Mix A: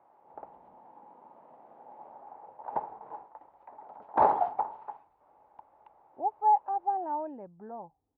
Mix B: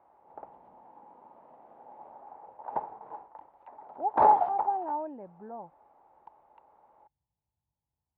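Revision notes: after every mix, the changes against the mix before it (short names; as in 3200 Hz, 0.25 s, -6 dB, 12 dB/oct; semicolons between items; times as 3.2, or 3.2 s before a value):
speech: entry -2.20 s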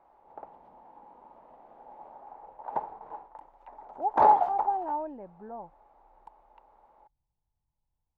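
speech: remove HPF 66 Hz 24 dB/oct; master: remove air absorption 240 m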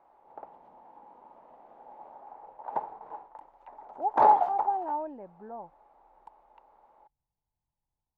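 master: add low shelf 110 Hz -8 dB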